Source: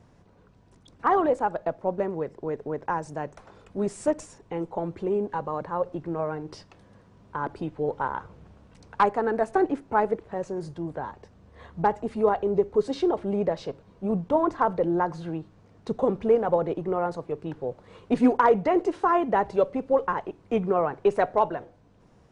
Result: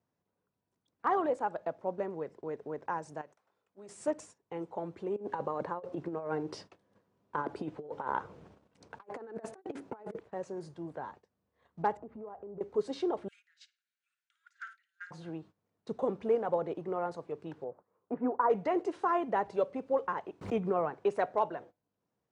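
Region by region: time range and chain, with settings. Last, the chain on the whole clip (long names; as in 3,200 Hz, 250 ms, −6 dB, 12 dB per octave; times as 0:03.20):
0:03.21–0:03.89: low-shelf EQ 320 Hz −9.5 dB + downward compressor 3 to 1, threshold −42 dBFS + one half of a high-frequency compander decoder only
0:05.16–0:10.19: parametric band 410 Hz +4 dB 1.5 octaves + compressor whose output falls as the input rises −29 dBFS, ratio −0.5
0:11.97–0:12.61: Chebyshev low-pass filter 1,000 Hz + downward compressor, threshold −35 dBFS + low-shelf EQ 120 Hz +7.5 dB
0:13.28–0:15.11: Butterworth high-pass 1,400 Hz 96 dB per octave + parametric band 7,000 Hz +5.5 dB 0.27 octaves + flutter between parallel walls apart 9.3 metres, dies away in 0.32 s
0:17.64–0:18.50: low-pass filter 1,300 Hz 24 dB per octave + spectral tilt +2 dB per octave
0:20.41–0:20.90: low-shelf EQ 160 Hz +8 dB + background raised ahead of every attack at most 110 dB per second
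whole clip: noise gate −43 dBFS, range −17 dB; high-pass filter 80 Hz; low-shelf EQ 160 Hz −8 dB; level −7 dB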